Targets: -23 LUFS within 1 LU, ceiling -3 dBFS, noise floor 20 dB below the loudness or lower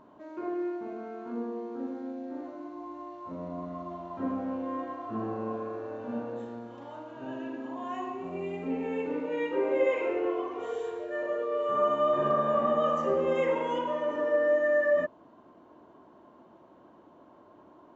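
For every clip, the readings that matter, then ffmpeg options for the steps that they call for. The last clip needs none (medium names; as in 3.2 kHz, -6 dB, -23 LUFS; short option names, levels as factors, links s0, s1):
loudness -31.0 LUFS; peak level -14.5 dBFS; loudness target -23.0 LUFS
-> -af "volume=2.51"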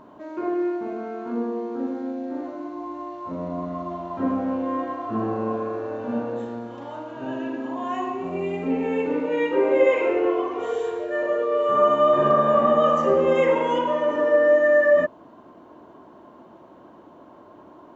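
loudness -23.0 LUFS; peak level -6.5 dBFS; noise floor -48 dBFS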